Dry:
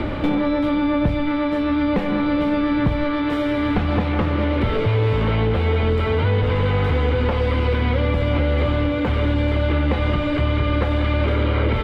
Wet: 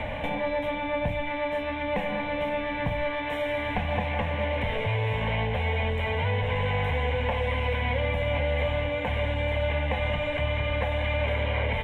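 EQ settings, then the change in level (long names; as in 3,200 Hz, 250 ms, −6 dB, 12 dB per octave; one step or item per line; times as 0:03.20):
low-shelf EQ 290 Hz −8.5 dB
mains-hum notches 60/120/180/240/300 Hz
phaser with its sweep stopped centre 1,300 Hz, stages 6
0.0 dB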